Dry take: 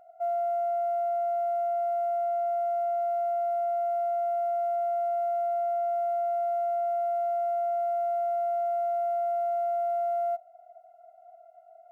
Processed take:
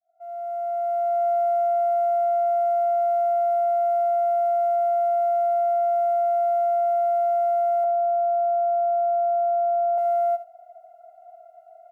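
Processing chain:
fade in at the beginning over 1.26 s
0:07.84–0:09.98: low-pass filter 1,200 Hz 12 dB per octave
single-tap delay 74 ms −12.5 dB
level +5 dB

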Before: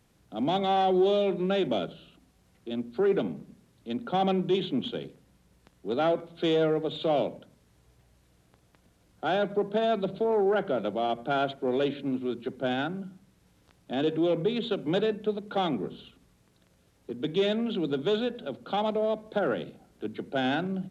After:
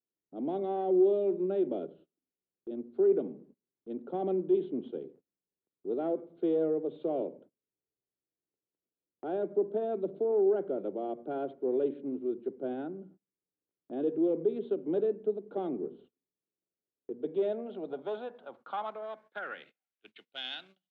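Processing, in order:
band-pass filter sweep 380 Hz → 3,500 Hz, 0:16.98–0:20.51
noise gate −55 dBFS, range −26 dB

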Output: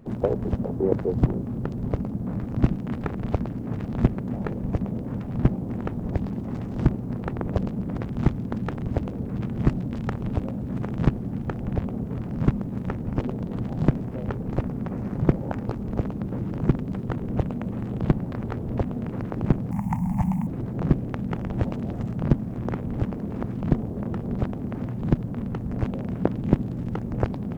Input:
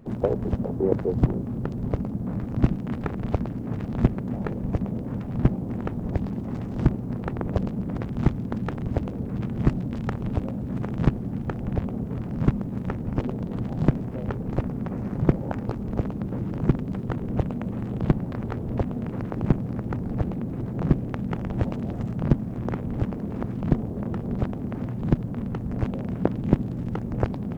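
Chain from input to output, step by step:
0:19.71–0:20.47: drawn EQ curve 130 Hz 0 dB, 180 Hz +10 dB, 440 Hz −24 dB, 900 Hz +14 dB, 1,400 Hz −8 dB, 2,100 Hz +7 dB, 3,900 Hz −9 dB, 6,900 Hz +13 dB

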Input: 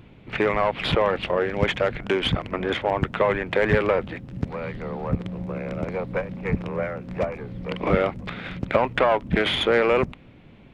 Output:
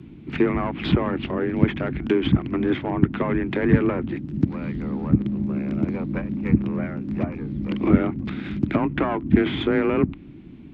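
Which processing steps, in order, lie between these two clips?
treble cut that deepens with the level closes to 2,300 Hz, closed at −19 dBFS
frequency shifter +24 Hz
low shelf with overshoot 410 Hz +8 dB, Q 3
level −3.5 dB

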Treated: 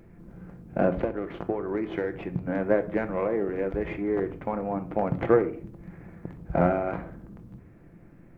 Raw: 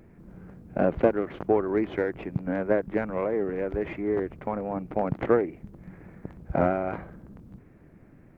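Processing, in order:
0:00.90–0:02.49: downward compressor 6 to 1, threshold −25 dBFS, peak gain reduction 10 dB
rectangular room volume 460 cubic metres, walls furnished, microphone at 0.79 metres

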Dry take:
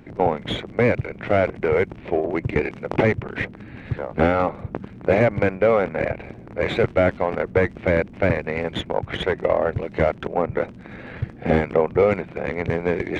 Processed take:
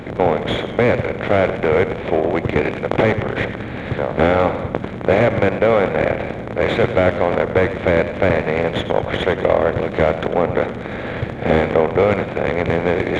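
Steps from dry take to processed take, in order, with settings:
compressor on every frequency bin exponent 0.6
feedback echo with a swinging delay time 99 ms, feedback 49%, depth 79 cents, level −11.5 dB

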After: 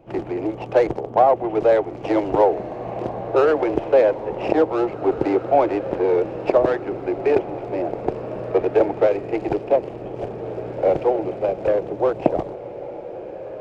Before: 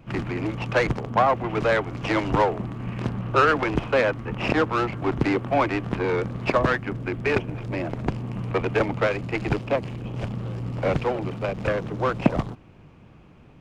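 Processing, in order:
flat-topped bell 520 Hz +14.5 dB
on a send: feedback delay with all-pass diffusion 1,906 ms, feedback 42%, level −12.5 dB
on the sum: level −7.5 dB

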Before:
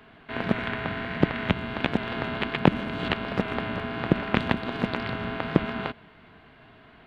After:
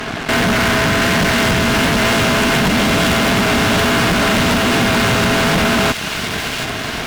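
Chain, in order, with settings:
notch filter 980 Hz, Q 26
in parallel at +1 dB: downward compressor, threshold −40 dBFS, peak gain reduction 26 dB
on the sum: fuzz pedal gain 40 dB, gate −49 dBFS
delay with a high-pass on its return 728 ms, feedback 59%, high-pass 2,400 Hz, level −3 dB

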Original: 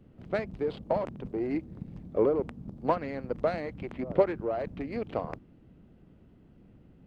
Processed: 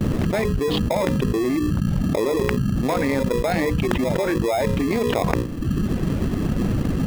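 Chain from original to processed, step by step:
noise gate with hold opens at −52 dBFS
reverb reduction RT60 0.9 s
mains-hum notches 60/120/180/240/300/360/420/480/540 Hz
in parallel at −4.5 dB: decimation without filtering 30×
on the sum: envelope flattener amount 100%
level −5.5 dB

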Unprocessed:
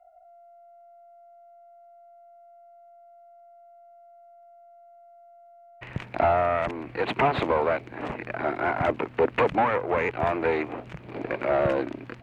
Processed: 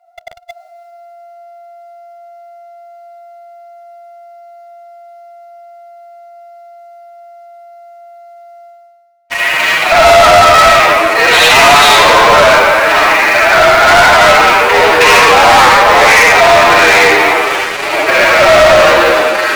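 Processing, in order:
in parallel at −4.5 dB: soft clipping −27.5 dBFS, distortion −7 dB
on the sum: high-pass filter 940 Hz 12 dB per octave
comb and all-pass reverb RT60 1.1 s, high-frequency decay 0.75×, pre-delay 5 ms, DRR −9 dB
phase-vocoder stretch with locked phases 1.6×
parametric band 4,600 Hz +7 dB 0.9 octaves
leveller curve on the samples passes 5
reversed playback
upward compression, threshold −21 dBFS
reversed playback
level +2 dB

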